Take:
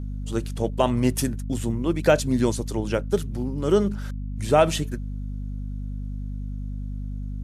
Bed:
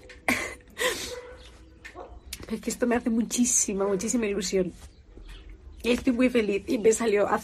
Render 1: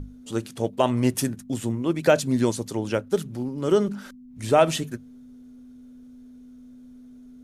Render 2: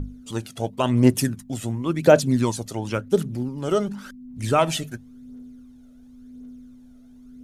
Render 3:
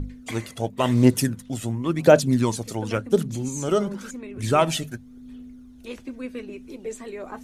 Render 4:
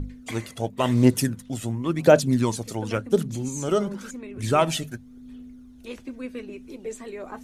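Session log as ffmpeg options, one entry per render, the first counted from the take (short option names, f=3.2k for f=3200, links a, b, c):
-af "bandreject=f=50:t=h:w=6,bandreject=f=100:t=h:w=6,bandreject=f=150:t=h:w=6,bandreject=f=200:t=h:w=6"
-af "aphaser=in_gain=1:out_gain=1:delay=1.6:decay=0.52:speed=0.93:type=triangular"
-filter_complex "[1:a]volume=-12.5dB[a];[0:a][a]amix=inputs=2:normalize=0"
-af "volume=-1dB"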